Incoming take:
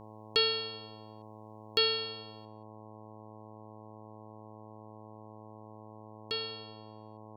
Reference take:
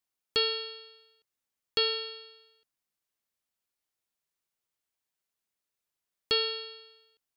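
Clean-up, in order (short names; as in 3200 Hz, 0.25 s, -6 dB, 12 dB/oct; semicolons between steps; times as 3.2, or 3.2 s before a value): de-hum 108.1 Hz, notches 10; gain correction +8.5 dB, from 2.45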